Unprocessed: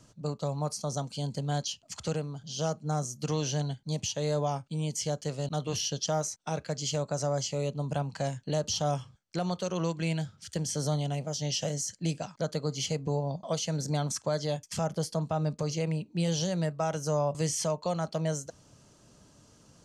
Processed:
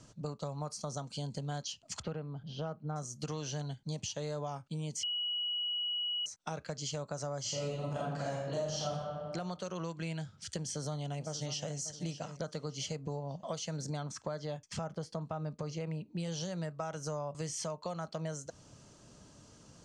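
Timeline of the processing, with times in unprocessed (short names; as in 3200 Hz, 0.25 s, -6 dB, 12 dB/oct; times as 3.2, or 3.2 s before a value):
2.02–2.96 air absorption 370 m
5.03–6.26 bleep 2920 Hz -22 dBFS
7.41–8.87 reverb throw, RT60 1.2 s, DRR -8 dB
10.6–11.77 echo throw 0.59 s, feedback 30%, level -12.5 dB
14.03–16.18 LPF 3200 Hz 6 dB/oct
whole clip: LPF 9500 Hz 24 dB/oct; dynamic EQ 1300 Hz, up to +5 dB, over -48 dBFS, Q 1.7; compressor 4:1, threshold -38 dBFS; gain +1 dB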